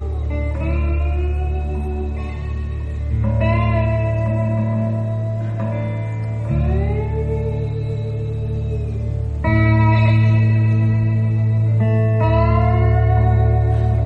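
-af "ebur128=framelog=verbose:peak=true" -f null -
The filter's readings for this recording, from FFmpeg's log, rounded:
Integrated loudness:
  I:         -18.6 LUFS
  Threshold: -28.6 LUFS
Loudness range:
  LRA:         5.9 LU
  Threshold: -38.8 LUFS
  LRA low:   -21.9 LUFS
  LRA high:  -15.9 LUFS
True peak:
  Peak:       -4.3 dBFS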